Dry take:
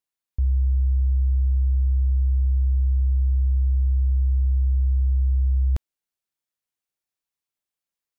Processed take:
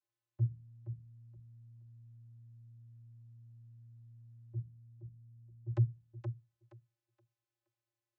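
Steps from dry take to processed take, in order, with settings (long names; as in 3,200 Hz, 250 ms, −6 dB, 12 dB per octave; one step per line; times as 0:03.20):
0:04.53–0:05.66: expanding power law on the bin magnitudes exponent 3.5
feedback echo with a high-pass in the loop 472 ms, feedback 23%, high-pass 200 Hz, level −4.5 dB
channel vocoder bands 32, square 116 Hz
level +14 dB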